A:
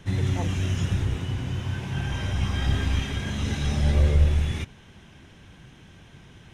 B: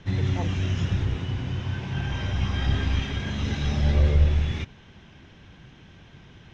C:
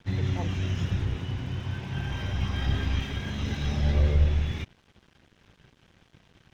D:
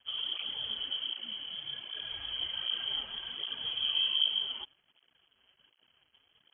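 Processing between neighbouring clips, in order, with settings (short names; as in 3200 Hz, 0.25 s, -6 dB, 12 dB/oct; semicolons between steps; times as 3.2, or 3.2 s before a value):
LPF 5700 Hz 24 dB/oct
crossover distortion -49 dBFS; gain -2.5 dB
inverted band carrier 3200 Hz; tape flanging out of phase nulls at 1.3 Hz, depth 6.9 ms; gain -7 dB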